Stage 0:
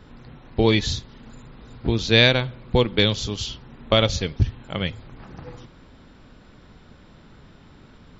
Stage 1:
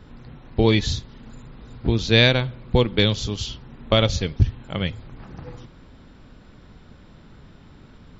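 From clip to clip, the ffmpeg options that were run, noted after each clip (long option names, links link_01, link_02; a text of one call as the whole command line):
ffmpeg -i in.wav -af "lowshelf=frequency=240:gain=4,volume=-1dB" out.wav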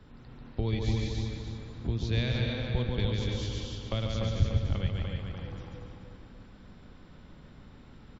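ffmpeg -i in.wav -filter_complex "[0:a]asplit=2[link_01][link_02];[link_02]aecho=0:1:140|231|290.2|328.6|353.6:0.631|0.398|0.251|0.158|0.1[link_03];[link_01][link_03]amix=inputs=2:normalize=0,acrossover=split=160[link_04][link_05];[link_05]acompressor=threshold=-34dB:ratio=2[link_06];[link_04][link_06]amix=inputs=2:normalize=0,asplit=2[link_07][link_08];[link_08]adelay=294,lowpass=frequency=4000:poles=1,volume=-4dB,asplit=2[link_09][link_10];[link_10]adelay=294,lowpass=frequency=4000:poles=1,volume=0.47,asplit=2[link_11][link_12];[link_12]adelay=294,lowpass=frequency=4000:poles=1,volume=0.47,asplit=2[link_13][link_14];[link_14]adelay=294,lowpass=frequency=4000:poles=1,volume=0.47,asplit=2[link_15][link_16];[link_16]adelay=294,lowpass=frequency=4000:poles=1,volume=0.47,asplit=2[link_17][link_18];[link_18]adelay=294,lowpass=frequency=4000:poles=1,volume=0.47[link_19];[link_09][link_11][link_13][link_15][link_17][link_19]amix=inputs=6:normalize=0[link_20];[link_07][link_20]amix=inputs=2:normalize=0,volume=-8dB" out.wav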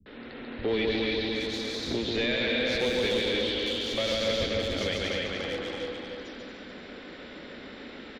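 ffmpeg -i in.wav -filter_complex "[0:a]asplit=2[link_01][link_02];[link_02]highpass=frequency=720:poles=1,volume=30dB,asoftclip=type=tanh:threshold=-13dB[link_03];[link_01][link_03]amix=inputs=2:normalize=0,lowpass=frequency=2000:poles=1,volume=-6dB,equalizer=frequency=125:width_type=o:width=1:gain=-9,equalizer=frequency=250:width_type=o:width=1:gain=7,equalizer=frequency=500:width_type=o:width=1:gain=6,equalizer=frequency=1000:width_type=o:width=1:gain=-8,equalizer=frequency=2000:width_type=o:width=1:gain=6,equalizer=frequency=4000:width_type=o:width=1:gain=10,acrossover=split=170|4000[link_04][link_05][link_06];[link_05]adelay=60[link_07];[link_06]adelay=680[link_08];[link_04][link_07][link_08]amix=inputs=3:normalize=0,volume=-8dB" out.wav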